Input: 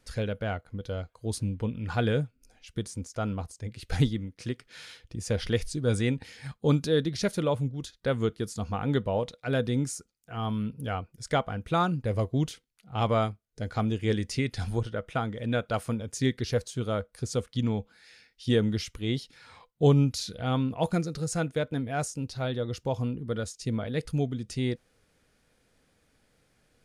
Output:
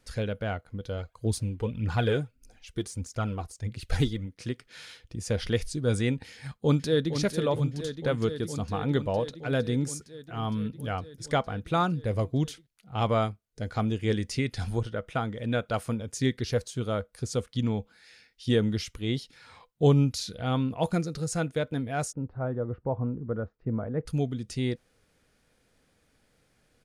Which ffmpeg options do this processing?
ffmpeg -i in.wav -filter_complex "[0:a]asplit=3[link_01][link_02][link_03];[link_01]afade=type=out:start_time=0.97:duration=0.02[link_04];[link_02]aphaser=in_gain=1:out_gain=1:delay=3:decay=0.5:speed=1.6:type=triangular,afade=type=in:start_time=0.97:duration=0.02,afade=type=out:start_time=4.25:duration=0.02[link_05];[link_03]afade=type=in:start_time=4.25:duration=0.02[link_06];[link_04][link_05][link_06]amix=inputs=3:normalize=0,asplit=2[link_07][link_08];[link_08]afade=type=in:start_time=6.33:duration=0.01,afade=type=out:start_time=7.14:duration=0.01,aecho=0:1:460|920|1380|1840|2300|2760|3220|3680|4140|4600|5060|5520:0.375837|0.30067|0.240536|0.192429|0.153943|0.123154|0.0985235|0.0788188|0.0630551|0.050444|0.0403552|0.0322842[link_09];[link_07][link_09]amix=inputs=2:normalize=0,asplit=3[link_10][link_11][link_12];[link_10]afade=type=out:start_time=22.11:duration=0.02[link_13];[link_11]lowpass=frequency=1400:width=0.5412,lowpass=frequency=1400:width=1.3066,afade=type=in:start_time=22.11:duration=0.02,afade=type=out:start_time=24.05:duration=0.02[link_14];[link_12]afade=type=in:start_time=24.05:duration=0.02[link_15];[link_13][link_14][link_15]amix=inputs=3:normalize=0" out.wav

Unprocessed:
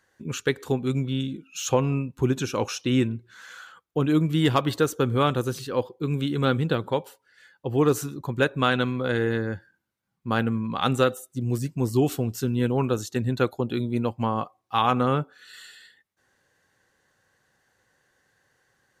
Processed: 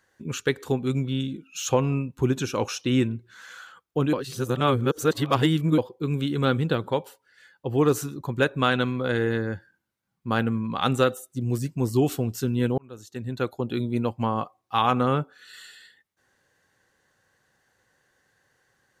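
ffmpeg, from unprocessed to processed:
ffmpeg -i in.wav -filter_complex "[0:a]asplit=4[link_01][link_02][link_03][link_04];[link_01]atrim=end=4.132[link_05];[link_02]atrim=start=4.128:end=5.782,asetpts=PTS-STARTPTS,areverse[link_06];[link_03]atrim=start=5.778:end=12.78,asetpts=PTS-STARTPTS,afade=type=out:start_time=6.998:duration=0.004:curve=hsin[link_07];[link_04]atrim=start=12.78,asetpts=PTS-STARTPTS,afade=type=in:duration=1.03[link_08];[link_05][link_06]acrossfade=duration=0.004:curve1=hsin:curve2=hsin[link_09];[link_07][link_08]concat=n=2:v=0:a=1[link_10];[link_09][link_10]acrossfade=duration=0.004:curve1=hsin:curve2=hsin" out.wav

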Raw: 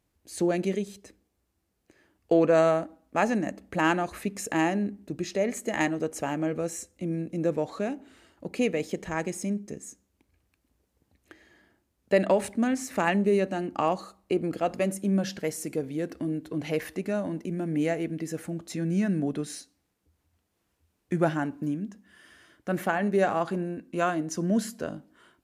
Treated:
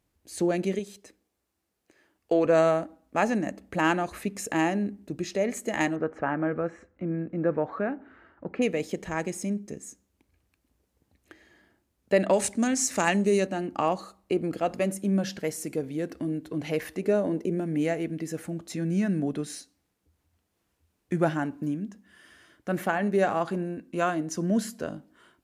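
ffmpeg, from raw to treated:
ffmpeg -i in.wav -filter_complex "[0:a]asettb=1/sr,asplit=3[link_01][link_02][link_03];[link_01]atrim=end=0.794[link_04];[link_02]atrim=start=0.79:end=2.46,asetpts=PTS-STARTPTS,afade=type=in:duration=0.004:curve=qsin,afade=type=out:start_time=1.666:duration=0.004:curve=qsin,lowshelf=frequency=190:gain=-11[link_05];[link_03]atrim=start=2.456[link_06];[link_04][link_05]acrossfade=duration=0.004:curve1=hsin:curve2=qsin[link_07];[link_07][link_06]acrossfade=duration=0.004:curve1=qsin:curve2=hsin,asettb=1/sr,asplit=3[link_08][link_09][link_10];[link_08]atrim=end=5.964[link_11];[link_09]atrim=start=5.96:end=8.62,asetpts=PTS-STARTPTS,afade=type=in:duration=0.004:curve=qsin,afade=type=out:start_time=2.656:duration=0.004:curve=qsin,lowpass=frequency=1500:width_type=q:width=2.4[link_12];[link_10]atrim=start=8.616[link_13];[link_11][link_12]acrossfade=duration=0.004:curve1=hsin:curve2=qsin[link_14];[link_14][link_13]acrossfade=duration=0.004:curve1=qsin:curve2=hsin,asettb=1/sr,asplit=3[link_15][link_16][link_17];[link_15]atrim=end=12.334[link_18];[link_16]atrim=start=12.33:end=13.47,asetpts=PTS-STARTPTS,afade=type=in:duration=0.004:curve=qsin,afade=type=out:start_time=1.136:duration=0.004:curve=qsin,equalizer=frequency=6800:width_type=o:width=1.4:gain=13[link_19];[link_17]atrim=start=13.466[link_20];[link_18][link_19]acrossfade=duration=0.004:curve1=hsin:curve2=qsin[link_21];[link_21][link_20]acrossfade=duration=0.004:curve1=qsin:curve2=hsin,asettb=1/sr,asplit=3[link_22][link_23][link_24];[link_22]atrim=end=17.024[link_25];[link_23]atrim=start=17.02:end=17.6,asetpts=PTS-STARTPTS,afade=type=in:duration=0.004:curve=qsin,afade=type=out:start_time=0.576:duration=0.004:curve=qsin,equalizer=frequency=440:width=1.8:gain=11.5[link_26];[link_24]atrim=start=17.596[link_27];[link_25][link_26]acrossfade=duration=0.004:curve1=hsin:curve2=qsin[link_28];[link_28][link_27]acrossfade=duration=0.004:curve1=qsin:curve2=hsin" out.wav

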